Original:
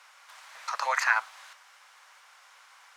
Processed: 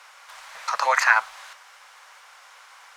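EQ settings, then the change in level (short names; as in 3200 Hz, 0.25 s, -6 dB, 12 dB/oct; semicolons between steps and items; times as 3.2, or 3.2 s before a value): low shelf 400 Hz +9 dB; +6.0 dB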